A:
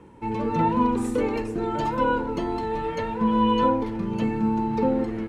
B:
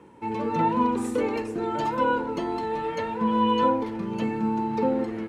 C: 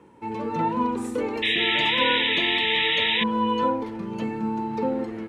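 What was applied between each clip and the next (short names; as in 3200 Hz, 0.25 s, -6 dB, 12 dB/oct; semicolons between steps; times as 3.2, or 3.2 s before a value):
HPF 210 Hz 6 dB/oct
painted sound noise, 1.42–3.24, 1700–3900 Hz -22 dBFS; gain -1.5 dB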